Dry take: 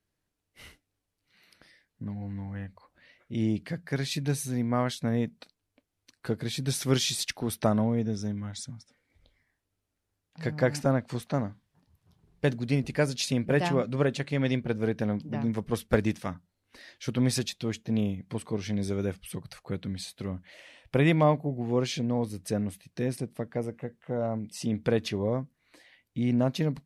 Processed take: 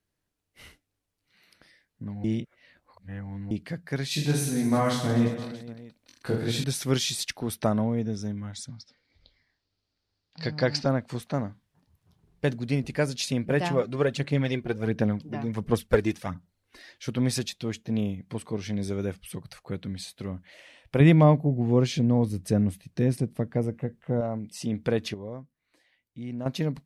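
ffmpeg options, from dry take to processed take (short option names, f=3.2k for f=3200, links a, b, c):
-filter_complex "[0:a]asettb=1/sr,asplit=3[a][b][c];[a]atrim=end=4.084[d];[b]atrim=start=4.08:end=6.64,asetpts=PTS-STARTPTS,afade=t=in:d=0.004:c=qsin,afade=t=out:st=2.556:d=0.004:c=qsin,aecho=1:1:20|46|79.8|123.7|180.9|255.1|351.7|477.2|640.3:0.794|0.631|0.501|0.398|0.316|0.251|0.2|0.158|0.126,atrim=end_sample=112896[e];[c]atrim=start=6.636[f];[d][e]acrossfade=d=0.004:c1=hsin:c2=qsin[g];[g][f]acrossfade=d=0.004:c1=qsin:c2=hsin,asettb=1/sr,asplit=3[h][i][j];[h]atrim=end=8.684[k];[i]atrim=start=8.68:end=10.89,asetpts=PTS-STARTPTS,afade=t=in:d=0.004:c=qsin,afade=t=out:st=2.206:d=0.004:c=qsin,lowpass=f=4.6k:t=q:w=5[l];[j]atrim=start=10.886[m];[k][l]acrossfade=d=0.004:c1=hsin:c2=qsin[n];[n][m]acrossfade=d=0.004:c1=qsin:c2=hsin,asplit=3[o][p][q];[o]afade=t=out:st=13.71:d=0.02[r];[p]aphaser=in_gain=1:out_gain=1:delay=2.9:decay=0.46:speed=1.4:type=sinusoidal,afade=t=in:st=13.71:d=0.02,afade=t=out:st=16.91:d=0.02[s];[q]afade=t=in:st=16.91:d=0.02[t];[r][s][t]amix=inputs=3:normalize=0,asettb=1/sr,asplit=3[u][v][w];[u]atrim=end=21.004[x];[v]atrim=start=21:end=24.21,asetpts=PTS-STARTPTS,afade=t=in:d=0.004:c=qsin,afade=t=out:st=3.206:d=0.004:c=qsin,lowshelf=f=310:g=9.5[y];[w]atrim=start=24.206[z];[x][y]acrossfade=d=0.004:c1=hsin:c2=qsin[aa];[aa][z]acrossfade=d=0.004:c1=qsin:c2=hsin,asplit=5[ab][ac][ad][ae][af];[ab]atrim=end=2.242[ag];[ac]atrim=start=2.238:end=3.512,asetpts=PTS-STARTPTS,areverse[ah];[ad]atrim=start=3.508:end=25.142[ai];[ae]atrim=start=25.138:end=26.462,asetpts=PTS-STARTPTS,volume=-9.5dB[aj];[af]atrim=start=26.458[ak];[ag][ah]acrossfade=d=0.004:c1=hsin:c2=hsin[al];[al][ai]acrossfade=d=0.004:c1=hsin:c2=hsin[am];[am][aj]acrossfade=d=0.004:c1=hsin:c2=hsin[an];[an][ak]acrossfade=d=0.004:c1=hsin:c2=hsin"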